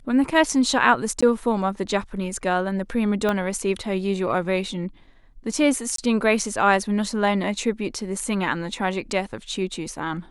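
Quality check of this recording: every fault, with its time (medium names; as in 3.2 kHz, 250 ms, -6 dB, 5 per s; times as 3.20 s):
1.21–1.23 s: dropout 15 ms
3.29 s: pop -11 dBFS
5.96–5.98 s: dropout 23 ms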